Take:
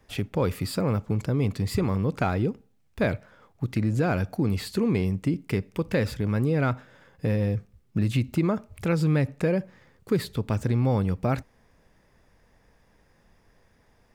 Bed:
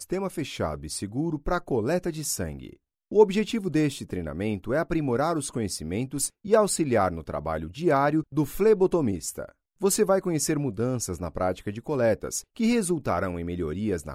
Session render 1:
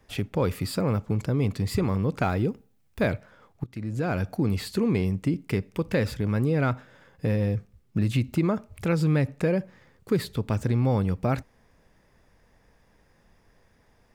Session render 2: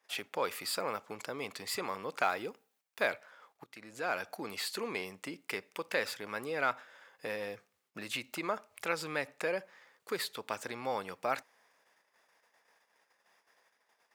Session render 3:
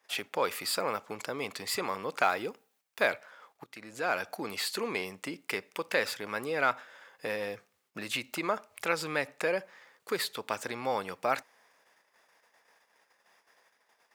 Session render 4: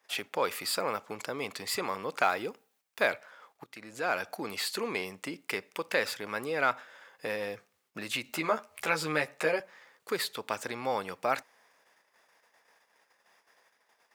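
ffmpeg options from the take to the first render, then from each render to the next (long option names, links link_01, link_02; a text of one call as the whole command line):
ffmpeg -i in.wav -filter_complex "[0:a]asettb=1/sr,asplit=3[link_01][link_02][link_03];[link_01]atrim=end=2.234[link_04];[link_02]atrim=start=2.23:end=3.08,asetpts=PTS-STARTPTS,afade=type=in:duration=0.004:curve=qsin,afade=type=out:start_time=0.846:duration=0.004:curve=qsin,highshelf=frequency=11000:gain=8[link_05];[link_03]atrim=start=3.076[link_06];[link_04][link_05]acrossfade=duration=0.004:curve1=hsin:curve2=qsin[link_07];[link_07][link_06]acrossfade=duration=0.004:curve1=qsin:curve2=hsin,asplit=2[link_08][link_09];[link_08]atrim=end=3.64,asetpts=PTS-STARTPTS,afade=type=out:start_time=3.636:duration=0.004:curve=hsin:silence=0.133352[link_10];[link_09]atrim=start=3.64,asetpts=PTS-STARTPTS,afade=type=in:duration=0.64:silence=0.133352[link_11];[link_10][link_11]concat=n=2:v=0:a=1" out.wav
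ffmpeg -i in.wav -af "agate=range=-9dB:threshold=-60dB:ratio=16:detection=peak,highpass=770" out.wav
ffmpeg -i in.wav -af "volume=4dB" out.wav
ffmpeg -i in.wav -filter_complex "[0:a]asettb=1/sr,asplit=3[link_01][link_02][link_03];[link_01]atrim=end=8.244[link_04];[link_02]atrim=start=8.24:end=9.6,asetpts=PTS-STARTPTS,afade=type=in:duration=0.004:curve=qsin,afade=type=out:start_time=1.356:duration=0.004:curve=qsin,asplit=2[link_05][link_06];[link_06]adelay=13,volume=-3dB[link_07];[link_05][link_07]amix=inputs=2:normalize=0,atrim=end_sample=59976[link_08];[link_03]atrim=start=9.596[link_09];[link_04][link_08]acrossfade=duration=0.004:curve1=hsin:curve2=qsin[link_10];[link_10][link_09]acrossfade=duration=0.004:curve1=qsin:curve2=hsin" out.wav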